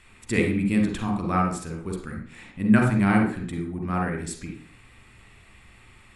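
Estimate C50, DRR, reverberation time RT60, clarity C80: 4.0 dB, 1.5 dB, 0.50 s, 9.0 dB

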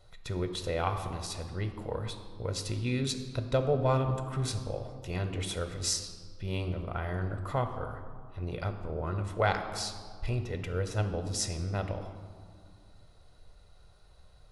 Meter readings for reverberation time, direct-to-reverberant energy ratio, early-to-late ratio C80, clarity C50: 2.3 s, 7.0 dB, 10.0 dB, 9.0 dB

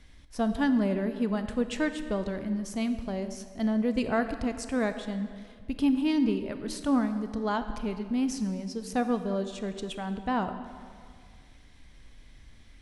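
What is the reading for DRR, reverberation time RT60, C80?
9.0 dB, 2.1 s, 10.5 dB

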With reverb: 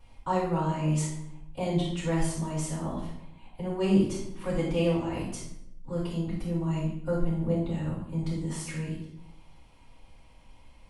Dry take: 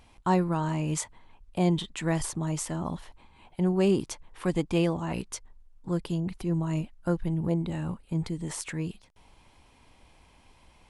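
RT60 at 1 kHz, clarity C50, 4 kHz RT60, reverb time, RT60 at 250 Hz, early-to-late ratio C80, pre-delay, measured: 0.65 s, 2.5 dB, 0.60 s, 0.75 s, 1.0 s, 6.0 dB, 3 ms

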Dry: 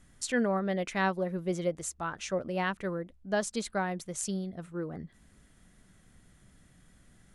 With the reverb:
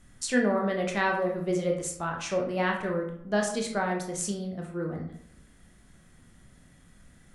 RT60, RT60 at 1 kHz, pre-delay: 0.65 s, 0.65 s, 17 ms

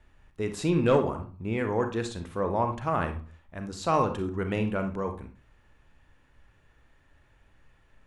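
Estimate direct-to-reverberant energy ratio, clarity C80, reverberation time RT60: 6.5 dB, 16.0 dB, 0.40 s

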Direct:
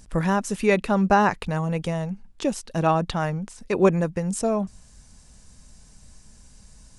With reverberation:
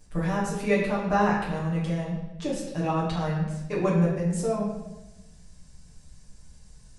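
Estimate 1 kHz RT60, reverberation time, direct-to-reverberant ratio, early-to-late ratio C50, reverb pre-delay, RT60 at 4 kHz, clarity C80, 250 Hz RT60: 0.85 s, 1.0 s, -7.5 dB, 3.0 dB, 7 ms, 0.90 s, 5.5 dB, 1.4 s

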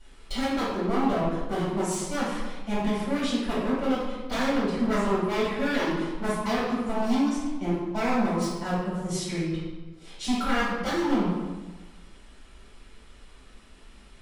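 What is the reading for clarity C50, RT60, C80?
-0.5 dB, 1.3 s, 2.5 dB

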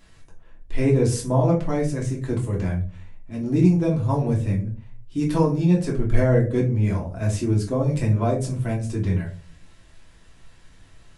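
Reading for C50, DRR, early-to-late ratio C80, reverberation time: 9.5 dB, -3.0 dB, 15.5 dB, 0.40 s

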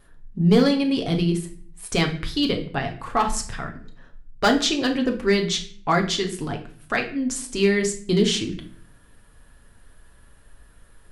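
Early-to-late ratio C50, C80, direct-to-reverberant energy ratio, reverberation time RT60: 11.0 dB, 15.0 dB, 2.5 dB, 0.50 s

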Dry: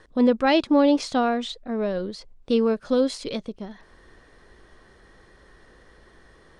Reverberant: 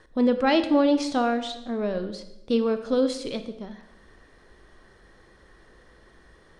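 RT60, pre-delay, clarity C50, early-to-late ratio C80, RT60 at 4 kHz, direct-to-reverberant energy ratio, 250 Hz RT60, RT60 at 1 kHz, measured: 0.85 s, 25 ms, 11.0 dB, 13.5 dB, 0.75 s, 9.0 dB, 1.0 s, 0.80 s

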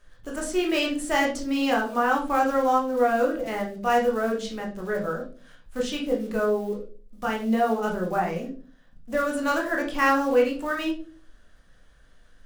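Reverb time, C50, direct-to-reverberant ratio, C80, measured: 0.40 s, 8.5 dB, -1.5 dB, 14.0 dB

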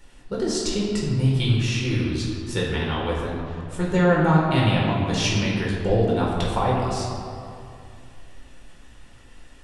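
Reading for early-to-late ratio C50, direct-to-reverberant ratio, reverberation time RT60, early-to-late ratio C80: 0.0 dB, -4.5 dB, 2.5 s, 1.5 dB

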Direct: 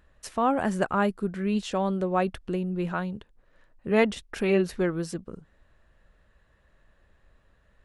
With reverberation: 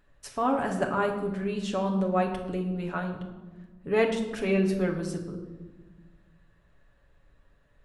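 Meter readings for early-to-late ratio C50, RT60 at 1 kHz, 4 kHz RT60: 7.5 dB, 1.2 s, 0.80 s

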